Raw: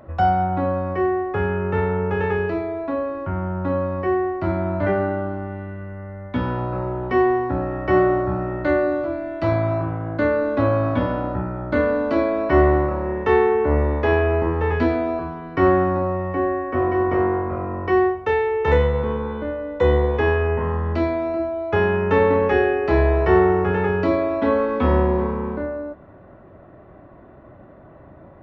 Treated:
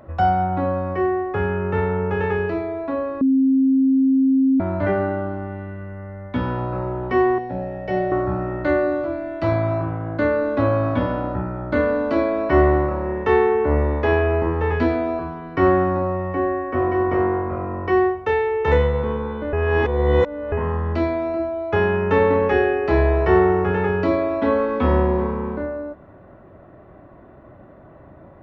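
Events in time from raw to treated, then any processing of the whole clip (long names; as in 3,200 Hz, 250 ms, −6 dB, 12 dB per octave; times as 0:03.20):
0:03.21–0:04.60: beep over 266 Hz −13 dBFS
0:07.38–0:08.12: phaser with its sweep stopped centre 320 Hz, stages 6
0:19.53–0:20.52: reverse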